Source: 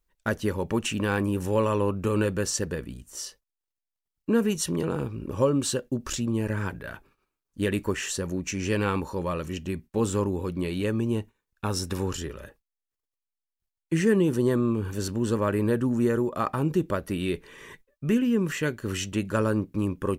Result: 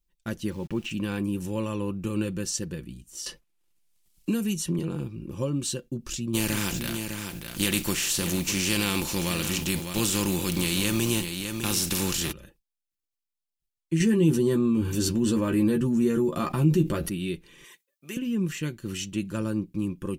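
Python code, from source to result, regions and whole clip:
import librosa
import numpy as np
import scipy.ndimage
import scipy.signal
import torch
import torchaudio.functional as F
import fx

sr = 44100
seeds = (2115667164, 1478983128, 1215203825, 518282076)

y = fx.chain(x, sr, fx.lowpass(hz=3400.0, slope=12),
    fx.sample_gate(floor_db=-43.0), at=(0.5, 0.91))
y = fx.chain(y, sr, fx.lowpass(hz=12000.0, slope=12),
    fx.high_shelf(hz=8200.0, db=11.5),
    fx.band_squash(depth_pct=70), at=(3.26, 4.79))
y = fx.spec_flatten(y, sr, power=0.5, at=(6.33, 12.31), fade=0.02)
y = fx.echo_single(y, sr, ms=605, db=-13.5, at=(6.33, 12.31), fade=0.02)
y = fx.env_flatten(y, sr, amount_pct=50, at=(6.33, 12.31), fade=0.02)
y = fx.chain(y, sr, fx.doubler(ms=13.0, db=-5),
    fx.env_flatten(amount_pct=50), at=(14.0, 17.09))
y = fx.chain(y, sr, fx.highpass(hz=530.0, slope=12),
    fx.high_shelf(hz=5100.0, db=7.5), at=(17.64, 18.17))
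y = fx.band_shelf(y, sr, hz=900.0, db=-8.5, octaves=2.5)
y = y + 0.42 * np.pad(y, (int(5.8 * sr / 1000.0), 0))[:len(y)]
y = F.gain(torch.from_numpy(y), -2.0).numpy()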